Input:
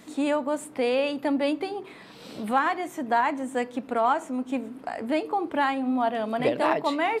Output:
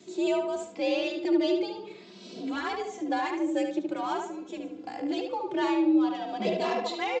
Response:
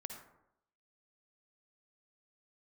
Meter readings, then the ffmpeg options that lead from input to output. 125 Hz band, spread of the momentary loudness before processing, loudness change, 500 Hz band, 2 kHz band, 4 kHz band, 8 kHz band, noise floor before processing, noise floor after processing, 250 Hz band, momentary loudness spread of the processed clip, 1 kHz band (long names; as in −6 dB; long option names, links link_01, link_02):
can't be measured, 10 LU, −2.5 dB, −3.0 dB, −6.0 dB, 0.0 dB, −2.5 dB, −46 dBFS, −48 dBFS, +0.5 dB, 13 LU, −7.0 dB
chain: -filter_complex "[0:a]asplit=2[link_01][link_02];[link_02]adynamicsmooth=sensitivity=5.5:basefreq=4500,volume=-0.5dB[link_03];[link_01][link_03]amix=inputs=2:normalize=0,equalizer=frequency=1100:width=0.52:gain=-14.5,afreqshift=60,crystalizer=i=1.5:c=0,bandreject=frequency=1900:width=20,aresample=16000,aresample=44100,asplit=2[link_04][link_05];[link_05]adelay=73,lowpass=frequency=3500:poles=1,volume=-4dB,asplit=2[link_06][link_07];[link_07]adelay=73,lowpass=frequency=3500:poles=1,volume=0.38,asplit=2[link_08][link_09];[link_09]adelay=73,lowpass=frequency=3500:poles=1,volume=0.38,asplit=2[link_10][link_11];[link_11]adelay=73,lowpass=frequency=3500:poles=1,volume=0.38,asplit=2[link_12][link_13];[link_13]adelay=73,lowpass=frequency=3500:poles=1,volume=0.38[link_14];[link_06][link_08][link_10][link_12][link_14]amix=inputs=5:normalize=0[link_15];[link_04][link_15]amix=inputs=2:normalize=0,asplit=2[link_16][link_17];[link_17]adelay=2.7,afreqshift=0.49[link_18];[link_16][link_18]amix=inputs=2:normalize=1"